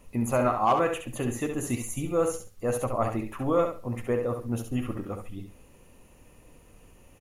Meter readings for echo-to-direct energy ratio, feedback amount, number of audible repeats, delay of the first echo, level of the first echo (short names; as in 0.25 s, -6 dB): -6.5 dB, 22%, 3, 68 ms, -6.5 dB